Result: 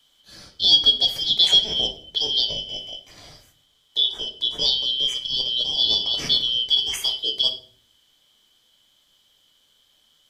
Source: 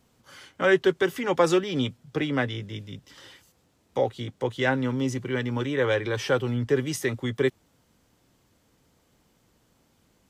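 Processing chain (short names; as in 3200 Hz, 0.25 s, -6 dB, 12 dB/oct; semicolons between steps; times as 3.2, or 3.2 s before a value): four-band scrambler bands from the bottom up 3412; shoebox room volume 64 m³, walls mixed, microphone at 0.41 m; gain +2.5 dB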